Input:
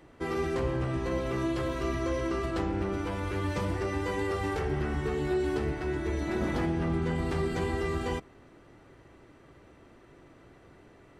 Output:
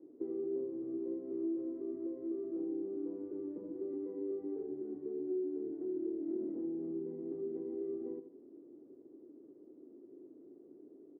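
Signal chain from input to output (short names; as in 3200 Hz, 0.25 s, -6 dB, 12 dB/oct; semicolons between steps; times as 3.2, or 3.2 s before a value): compressor 6:1, threshold -37 dBFS, peak gain reduction 11.5 dB; Butterworth band-pass 330 Hz, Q 2.1; feedback echo 79 ms, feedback 37%, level -10.5 dB; gain +3.5 dB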